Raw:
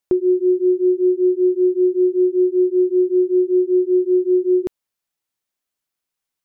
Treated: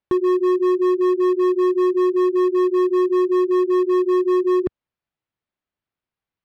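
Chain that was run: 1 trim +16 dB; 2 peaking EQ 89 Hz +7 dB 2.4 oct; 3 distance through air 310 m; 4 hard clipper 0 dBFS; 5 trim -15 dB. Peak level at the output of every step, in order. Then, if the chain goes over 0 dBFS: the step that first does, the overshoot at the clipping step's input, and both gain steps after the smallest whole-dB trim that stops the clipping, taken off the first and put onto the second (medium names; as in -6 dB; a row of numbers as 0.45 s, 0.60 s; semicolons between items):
+6.0 dBFS, +8.5 dBFS, +8.0 dBFS, 0.0 dBFS, -15.0 dBFS; step 1, 8.0 dB; step 1 +8 dB, step 5 -7 dB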